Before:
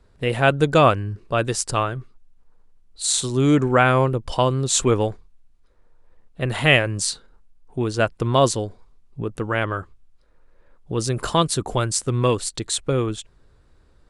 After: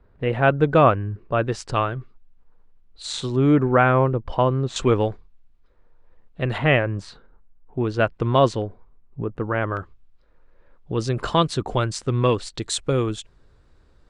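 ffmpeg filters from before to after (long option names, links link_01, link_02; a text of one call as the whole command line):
ffmpeg -i in.wav -af "asetnsamples=nb_out_samples=441:pad=0,asendcmd='1.52 lowpass f 3400;3.36 lowpass f 1900;4.76 lowpass f 3900;6.58 lowpass f 1800;7.84 lowpass f 3100;8.62 lowpass f 1700;9.77 lowpass f 4200;12.59 lowpass f 7900',lowpass=2000" out.wav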